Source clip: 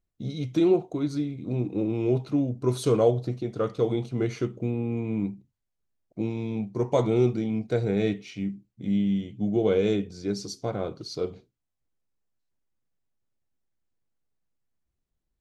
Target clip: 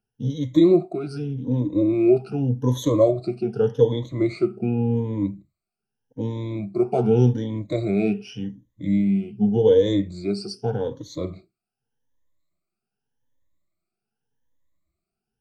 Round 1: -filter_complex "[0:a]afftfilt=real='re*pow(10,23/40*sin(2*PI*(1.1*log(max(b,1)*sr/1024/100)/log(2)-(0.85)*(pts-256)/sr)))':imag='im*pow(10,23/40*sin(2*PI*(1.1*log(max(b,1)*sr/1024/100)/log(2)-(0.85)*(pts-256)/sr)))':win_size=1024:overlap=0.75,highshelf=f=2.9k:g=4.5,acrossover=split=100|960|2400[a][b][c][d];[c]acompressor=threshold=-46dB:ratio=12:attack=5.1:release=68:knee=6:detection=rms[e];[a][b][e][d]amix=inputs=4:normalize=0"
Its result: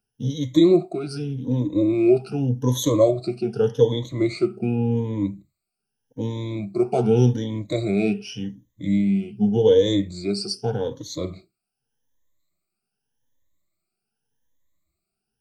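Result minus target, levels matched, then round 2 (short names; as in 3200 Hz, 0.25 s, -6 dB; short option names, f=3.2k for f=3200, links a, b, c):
8000 Hz band +8.0 dB
-filter_complex "[0:a]afftfilt=real='re*pow(10,23/40*sin(2*PI*(1.1*log(max(b,1)*sr/1024/100)/log(2)-(0.85)*(pts-256)/sr)))':imag='im*pow(10,23/40*sin(2*PI*(1.1*log(max(b,1)*sr/1024/100)/log(2)-(0.85)*(pts-256)/sr)))':win_size=1024:overlap=0.75,highshelf=f=2.9k:g=-5.5,acrossover=split=100|960|2400[a][b][c][d];[c]acompressor=threshold=-46dB:ratio=12:attack=5.1:release=68:knee=6:detection=rms[e];[a][b][e][d]amix=inputs=4:normalize=0"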